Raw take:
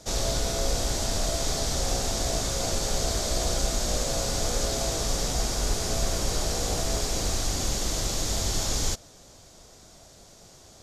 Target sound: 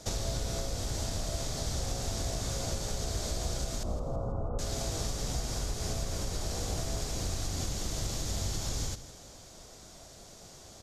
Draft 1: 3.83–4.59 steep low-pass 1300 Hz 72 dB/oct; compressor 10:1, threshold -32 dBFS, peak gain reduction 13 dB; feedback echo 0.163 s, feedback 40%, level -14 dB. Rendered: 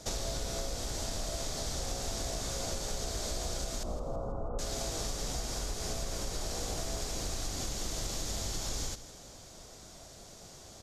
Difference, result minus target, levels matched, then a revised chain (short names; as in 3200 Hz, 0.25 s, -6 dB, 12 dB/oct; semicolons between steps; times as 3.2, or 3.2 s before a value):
125 Hz band -4.5 dB
3.83–4.59 steep low-pass 1300 Hz 72 dB/oct; compressor 10:1, threshold -32 dBFS, peak gain reduction 13 dB; dynamic EQ 100 Hz, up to +8 dB, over -54 dBFS, Q 0.75; feedback echo 0.163 s, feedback 40%, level -14 dB